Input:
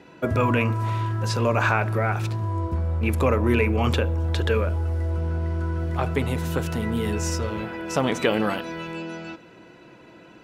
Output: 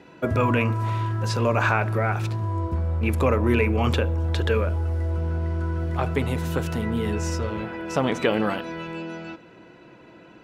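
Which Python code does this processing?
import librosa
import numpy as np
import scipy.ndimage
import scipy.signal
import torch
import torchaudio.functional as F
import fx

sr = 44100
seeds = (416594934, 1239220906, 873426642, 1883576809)

y = fx.high_shelf(x, sr, hz=5300.0, db=fx.steps((0.0, -2.5), (6.81, -8.0)))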